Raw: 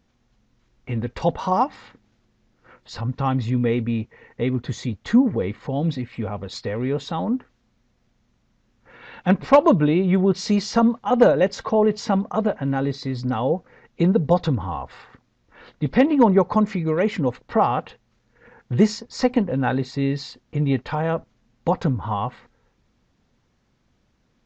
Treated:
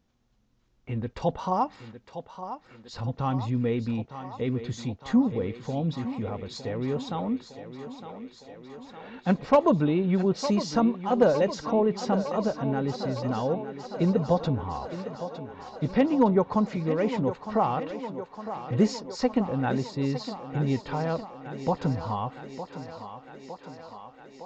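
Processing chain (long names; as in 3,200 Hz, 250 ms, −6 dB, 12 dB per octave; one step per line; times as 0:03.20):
parametric band 2,000 Hz −3.5 dB 0.84 octaves
feedback echo with a high-pass in the loop 909 ms, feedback 74%, high-pass 200 Hz, level −10.5 dB
level −5.5 dB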